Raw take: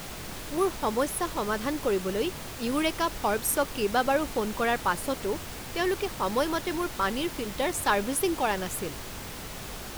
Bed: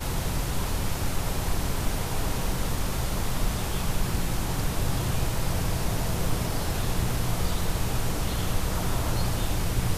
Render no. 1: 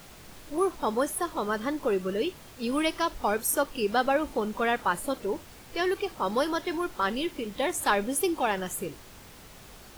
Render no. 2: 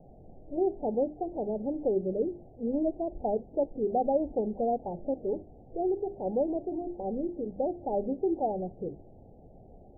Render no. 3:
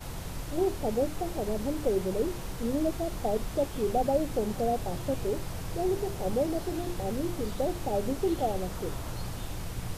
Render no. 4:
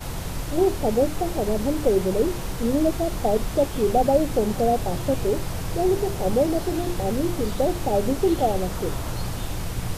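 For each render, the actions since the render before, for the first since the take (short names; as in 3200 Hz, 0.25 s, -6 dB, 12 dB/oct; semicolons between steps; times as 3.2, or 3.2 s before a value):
noise print and reduce 10 dB
steep low-pass 790 Hz 96 dB/oct; notches 50/100/150/200/250/300/350/400 Hz
add bed -10 dB
gain +7.5 dB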